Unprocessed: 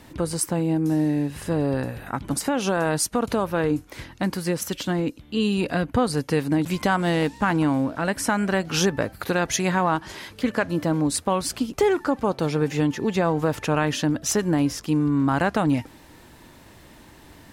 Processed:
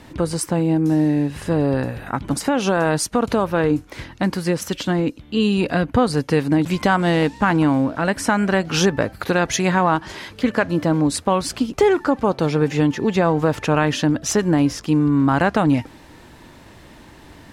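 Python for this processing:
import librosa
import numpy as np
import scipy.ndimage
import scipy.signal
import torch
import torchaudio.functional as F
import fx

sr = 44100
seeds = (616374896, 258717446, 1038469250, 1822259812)

y = fx.high_shelf(x, sr, hz=9700.0, db=-11.5)
y = y * librosa.db_to_amplitude(4.5)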